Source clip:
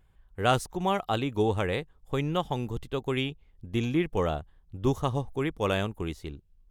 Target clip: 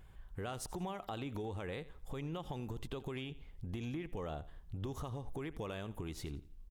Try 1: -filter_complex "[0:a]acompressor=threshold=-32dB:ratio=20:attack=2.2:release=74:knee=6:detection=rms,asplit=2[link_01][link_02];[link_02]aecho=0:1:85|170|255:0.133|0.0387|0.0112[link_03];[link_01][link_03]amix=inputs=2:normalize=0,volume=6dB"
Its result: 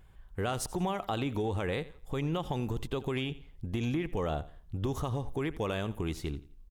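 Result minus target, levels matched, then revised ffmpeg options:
downward compressor: peak gain reduction −9.5 dB
-filter_complex "[0:a]acompressor=threshold=-42dB:ratio=20:attack=2.2:release=74:knee=6:detection=rms,asplit=2[link_01][link_02];[link_02]aecho=0:1:85|170|255:0.133|0.0387|0.0112[link_03];[link_01][link_03]amix=inputs=2:normalize=0,volume=6dB"

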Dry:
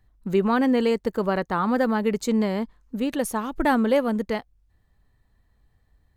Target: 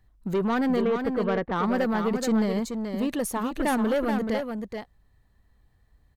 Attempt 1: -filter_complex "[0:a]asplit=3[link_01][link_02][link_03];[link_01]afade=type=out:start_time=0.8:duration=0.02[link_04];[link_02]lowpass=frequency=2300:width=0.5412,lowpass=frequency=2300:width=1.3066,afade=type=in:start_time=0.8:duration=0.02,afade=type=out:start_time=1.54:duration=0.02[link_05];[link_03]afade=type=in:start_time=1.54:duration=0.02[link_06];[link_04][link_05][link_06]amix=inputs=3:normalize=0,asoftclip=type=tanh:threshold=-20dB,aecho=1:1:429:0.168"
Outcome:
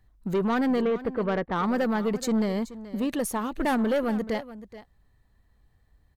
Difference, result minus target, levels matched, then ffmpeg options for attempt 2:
echo-to-direct −9.5 dB
-filter_complex "[0:a]asplit=3[link_01][link_02][link_03];[link_01]afade=type=out:start_time=0.8:duration=0.02[link_04];[link_02]lowpass=frequency=2300:width=0.5412,lowpass=frequency=2300:width=1.3066,afade=type=in:start_time=0.8:duration=0.02,afade=type=out:start_time=1.54:duration=0.02[link_05];[link_03]afade=type=in:start_time=1.54:duration=0.02[link_06];[link_04][link_05][link_06]amix=inputs=3:normalize=0,asoftclip=type=tanh:threshold=-20dB,aecho=1:1:429:0.501"

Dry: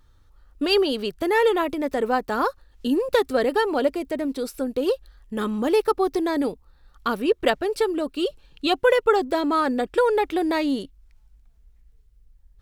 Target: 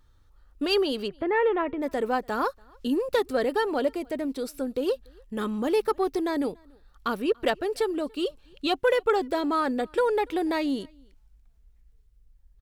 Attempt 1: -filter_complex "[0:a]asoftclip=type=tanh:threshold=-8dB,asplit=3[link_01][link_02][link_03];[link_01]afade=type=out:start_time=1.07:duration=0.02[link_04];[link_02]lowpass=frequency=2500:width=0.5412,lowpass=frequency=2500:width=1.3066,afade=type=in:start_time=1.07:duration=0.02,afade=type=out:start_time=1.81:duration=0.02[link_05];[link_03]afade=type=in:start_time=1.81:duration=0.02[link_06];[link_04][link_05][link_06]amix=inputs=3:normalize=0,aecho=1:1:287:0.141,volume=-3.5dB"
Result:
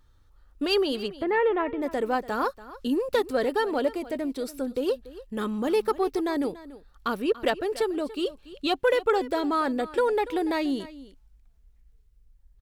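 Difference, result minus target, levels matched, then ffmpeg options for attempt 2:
echo-to-direct +12 dB
-filter_complex "[0:a]asoftclip=type=tanh:threshold=-8dB,asplit=3[link_01][link_02][link_03];[link_01]afade=type=out:start_time=1.07:duration=0.02[link_04];[link_02]lowpass=frequency=2500:width=0.5412,lowpass=frequency=2500:width=1.3066,afade=type=in:start_time=1.07:duration=0.02,afade=type=out:start_time=1.81:duration=0.02[link_05];[link_03]afade=type=in:start_time=1.81:duration=0.02[link_06];[link_04][link_05][link_06]amix=inputs=3:normalize=0,aecho=1:1:287:0.0355,volume=-3.5dB"

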